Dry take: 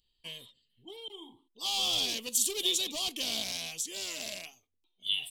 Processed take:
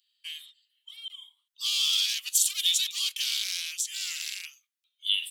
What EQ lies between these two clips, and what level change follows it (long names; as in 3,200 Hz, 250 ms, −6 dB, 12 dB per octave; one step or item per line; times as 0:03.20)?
Butterworth high-pass 1,300 Hz 48 dB per octave
+4.5 dB